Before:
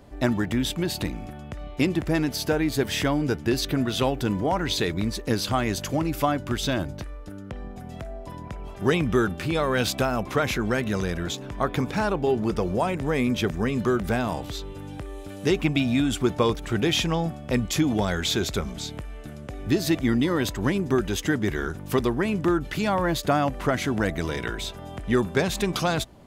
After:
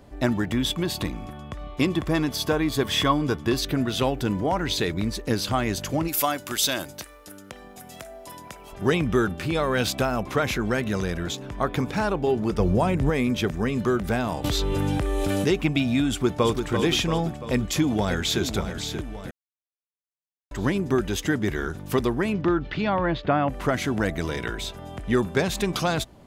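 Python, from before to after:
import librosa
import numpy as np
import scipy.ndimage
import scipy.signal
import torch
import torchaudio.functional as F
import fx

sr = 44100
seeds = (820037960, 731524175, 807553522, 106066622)

y = fx.small_body(x, sr, hz=(1100.0, 3400.0), ring_ms=45, db=fx.line((0.52, 12.0), (3.58, 17.0)), at=(0.52, 3.58), fade=0.02)
y = fx.riaa(y, sr, side='recording', at=(6.07, 8.71), fade=0.02)
y = fx.low_shelf(y, sr, hz=210.0, db=10.5, at=(12.59, 13.1))
y = fx.env_flatten(y, sr, amount_pct=100, at=(14.44, 15.47))
y = fx.echo_throw(y, sr, start_s=16.1, length_s=0.58, ms=340, feedback_pct=55, wet_db=-6.0)
y = fx.echo_throw(y, sr, start_s=17.34, length_s=1.09, ms=580, feedback_pct=50, wet_db=-9.5)
y = fx.lowpass(y, sr, hz=fx.line((22.32, 5200.0), (23.48, 2900.0)), slope=24, at=(22.32, 23.48), fade=0.02)
y = fx.edit(y, sr, fx.silence(start_s=19.31, length_s=1.2), tone=tone)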